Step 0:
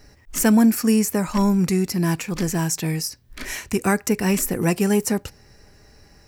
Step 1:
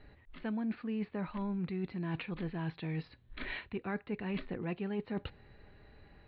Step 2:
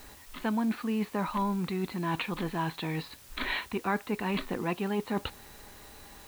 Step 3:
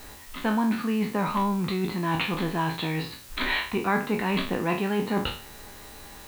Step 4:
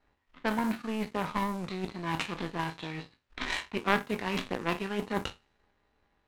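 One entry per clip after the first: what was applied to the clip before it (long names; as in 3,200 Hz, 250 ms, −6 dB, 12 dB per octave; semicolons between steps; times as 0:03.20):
Butterworth low-pass 4,100 Hz 96 dB per octave; reversed playback; downward compressor 6 to 1, threshold −28 dBFS, peak gain reduction 15 dB; reversed playback; level −6.5 dB
octave-band graphic EQ 125/250/1,000/4,000 Hz −5/+4/+11/+10 dB; in parallel at −6 dB: bit-depth reduction 8 bits, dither triangular
peak hold with a decay on every bin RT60 0.42 s; level +4 dB
power curve on the samples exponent 2; low-pass that shuts in the quiet parts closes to 2,400 Hz, open at −29.5 dBFS; level +3.5 dB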